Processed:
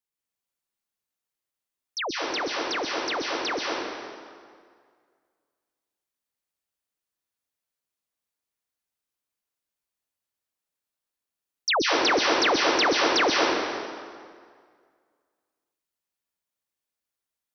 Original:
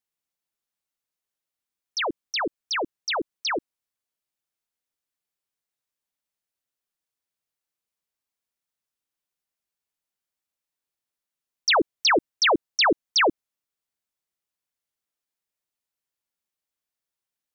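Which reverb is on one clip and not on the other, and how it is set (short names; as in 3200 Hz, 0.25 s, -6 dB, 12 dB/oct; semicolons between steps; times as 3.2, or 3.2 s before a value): plate-style reverb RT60 2 s, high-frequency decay 0.75×, pre-delay 0.115 s, DRR -2.5 dB; gain -4 dB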